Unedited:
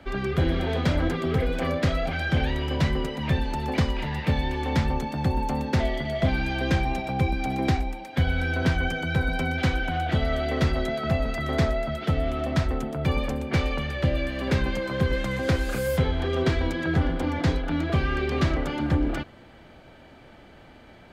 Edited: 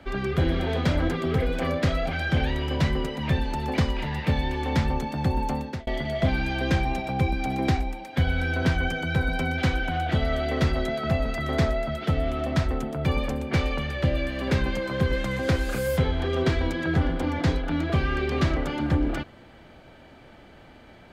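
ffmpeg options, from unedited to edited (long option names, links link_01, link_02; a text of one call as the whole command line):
ffmpeg -i in.wav -filter_complex "[0:a]asplit=2[link_01][link_02];[link_01]atrim=end=5.87,asetpts=PTS-STARTPTS,afade=type=out:start_time=5.51:duration=0.36[link_03];[link_02]atrim=start=5.87,asetpts=PTS-STARTPTS,afade=type=in:duration=0.004:curve=hsin[link_04];[link_03][link_04]concat=n=2:v=0:a=1" out.wav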